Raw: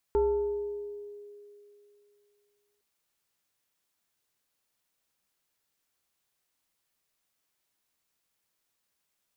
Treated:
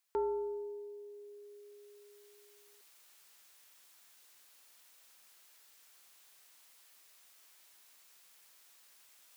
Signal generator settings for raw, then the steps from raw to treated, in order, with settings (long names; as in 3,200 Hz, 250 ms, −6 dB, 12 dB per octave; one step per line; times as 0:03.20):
two-operator FM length 2.66 s, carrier 411 Hz, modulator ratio 1.15, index 0.57, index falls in 2.07 s exponential, decay 2.77 s, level −20.5 dB
high-pass filter 890 Hz 6 dB per octave
reversed playback
upward compression, threshold −47 dBFS
reversed playback